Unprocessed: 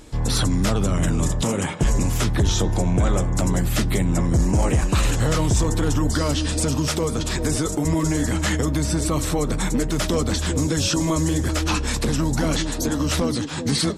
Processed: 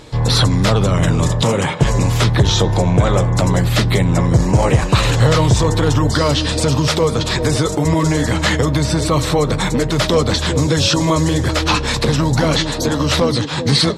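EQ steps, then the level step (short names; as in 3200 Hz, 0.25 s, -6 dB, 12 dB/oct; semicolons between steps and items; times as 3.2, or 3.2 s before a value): graphic EQ 125/500/1000/2000/4000 Hz +12/+9/+8/+6/+11 dB; -1.5 dB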